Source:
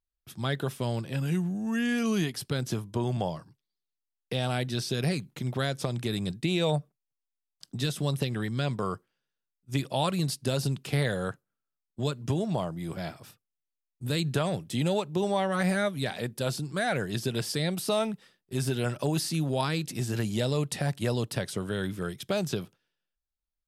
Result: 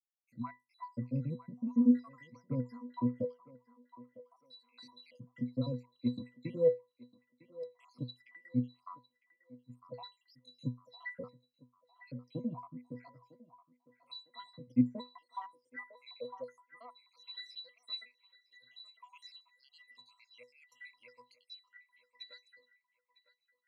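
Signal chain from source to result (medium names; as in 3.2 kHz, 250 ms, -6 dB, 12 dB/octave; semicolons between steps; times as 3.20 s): random holes in the spectrogram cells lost 83%; bass shelf 310 Hz -6.5 dB; in parallel at -6 dB: saturation -27.5 dBFS, distortion -15 dB; on the sum: pitch-class resonator B, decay 0.21 s; on a send: band-passed feedback delay 954 ms, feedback 45%, band-pass 1.1 kHz, level -13 dB; on the sum: high-pass sweep 190 Hz -> 2.3 kHz, 15.00–17.45 s; trim +8 dB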